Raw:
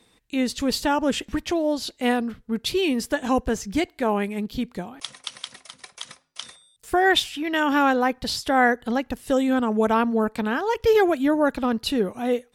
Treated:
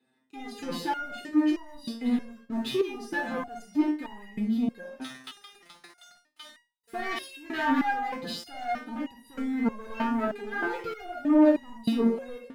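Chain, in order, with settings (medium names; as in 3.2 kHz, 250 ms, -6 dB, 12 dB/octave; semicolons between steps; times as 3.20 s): comb of notches 1.1 kHz; saturation -22.5 dBFS, distortion -9 dB; reverberation RT60 0.45 s, pre-delay 45 ms, DRR 3 dB; waveshaping leveller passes 2; resonator arpeggio 3.2 Hz 130–950 Hz; trim -5 dB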